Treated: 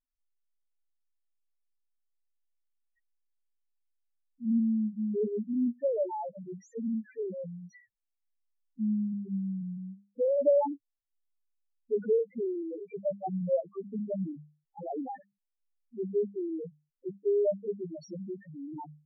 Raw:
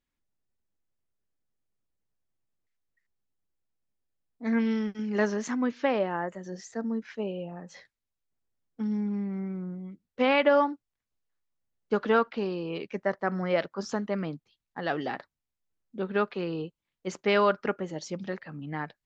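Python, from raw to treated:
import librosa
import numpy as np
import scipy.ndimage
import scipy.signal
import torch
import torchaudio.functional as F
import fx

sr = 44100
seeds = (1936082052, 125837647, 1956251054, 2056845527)

y = fx.env_lowpass_down(x, sr, base_hz=970.0, full_db=-21.0)
y = fx.hum_notches(y, sr, base_hz=50, count=4)
y = fx.spec_topn(y, sr, count=1)
y = y * 10.0 ** (5.0 / 20.0)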